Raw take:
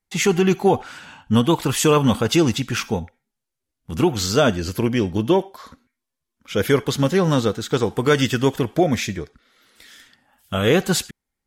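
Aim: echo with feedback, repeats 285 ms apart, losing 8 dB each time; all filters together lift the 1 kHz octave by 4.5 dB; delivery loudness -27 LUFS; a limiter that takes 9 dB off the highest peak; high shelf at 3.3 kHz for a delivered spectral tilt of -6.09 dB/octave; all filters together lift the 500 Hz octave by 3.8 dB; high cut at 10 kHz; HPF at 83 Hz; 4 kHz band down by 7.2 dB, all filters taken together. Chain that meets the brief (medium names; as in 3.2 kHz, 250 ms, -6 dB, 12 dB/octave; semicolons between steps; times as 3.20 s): high-pass 83 Hz; low-pass 10 kHz; peaking EQ 500 Hz +4 dB; peaking EQ 1 kHz +5.5 dB; treble shelf 3.3 kHz -7.5 dB; peaking EQ 4 kHz -4.5 dB; peak limiter -10 dBFS; feedback delay 285 ms, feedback 40%, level -8 dB; trim -5.5 dB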